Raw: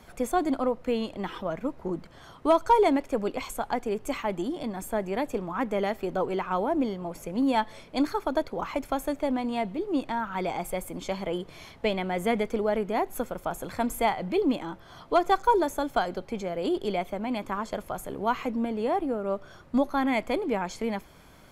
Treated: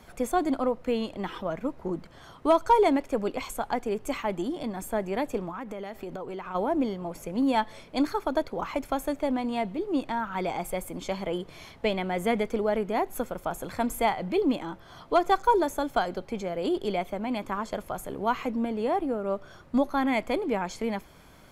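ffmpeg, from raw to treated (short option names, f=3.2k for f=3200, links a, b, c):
-filter_complex "[0:a]asplit=3[a][b][c];[a]afade=t=out:st=5.49:d=0.02[d];[b]acompressor=threshold=-32dB:ratio=12:attack=3.2:release=140:knee=1:detection=peak,afade=t=in:st=5.49:d=0.02,afade=t=out:st=6.54:d=0.02[e];[c]afade=t=in:st=6.54:d=0.02[f];[d][e][f]amix=inputs=3:normalize=0"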